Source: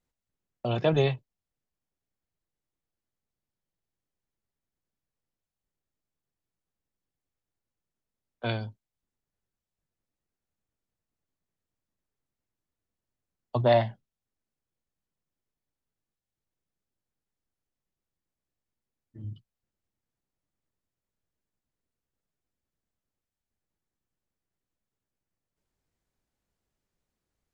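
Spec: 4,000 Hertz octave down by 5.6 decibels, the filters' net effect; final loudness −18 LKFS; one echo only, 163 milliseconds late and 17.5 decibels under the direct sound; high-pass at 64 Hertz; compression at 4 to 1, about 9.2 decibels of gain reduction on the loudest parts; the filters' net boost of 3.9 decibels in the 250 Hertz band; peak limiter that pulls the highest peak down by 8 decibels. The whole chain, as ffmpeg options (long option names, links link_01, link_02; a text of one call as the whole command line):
ffmpeg -i in.wav -af "highpass=64,equalizer=frequency=250:width_type=o:gain=5.5,equalizer=frequency=4000:width_type=o:gain=-7,acompressor=threshold=-27dB:ratio=4,alimiter=limit=-24dB:level=0:latency=1,aecho=1:1:163:0.133,volume=19dB" out.wav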